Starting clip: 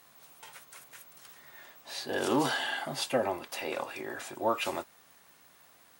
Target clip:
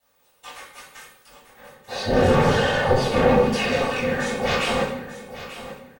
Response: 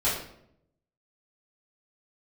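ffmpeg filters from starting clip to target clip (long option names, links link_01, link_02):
-filter_complex "[0:a]acontrast=36,aeval=exprs='0.0531*(abs(mod(val(0)/0.0531+3,4)-2)-1)':channel_layout=same,aecho=1:1:3:0.79,aeval=exprs='val(0)*sin(2*PI*140*n/s)':channel_layout=same,agate=range=-19dB:threshold=-44dB:ratio=16:detection=peak,asettb=1/sr,asplit=3[link_01][link_02][link_03];[link_01]atrim=end=1.274[link_04];[link_02]atrim=start=1.27:end=3.47,asetpts=PTS-STARTPTS,afade=type=in:duration=0.004:curve=qsin,afade=type=out:start_time=2.196:duration=0.004:curve=qsin,tiltshelf=frequency=1300:gain=7.5[link_05];[link_03]atrim=start=3.466[link_06];[link_04][link_05]acrossfade=duration=0.004:curve1=hsin:curve2=qsin[link_07];[link_07][link_06]acrossfade=duration=0.004:curve1=qsin:curve2=hsin,aecho=1:1:890|1780|2670:0.2|0.0459|0.0106[link_08];[1:a]atrim=start_sample=2205,asetrate=37485,aresample=44100[link_09];[link_08][link_09]afir=irnorm=-1:irlink=0,acrossover=split=8400[link_10][link_11];[link_11]acompressor=threshold=-51dB:ratio=4:attack=1:release=60[link_12];[link_10][link_12]amix=inputs=2:normalize=0,volume=-2.5dB"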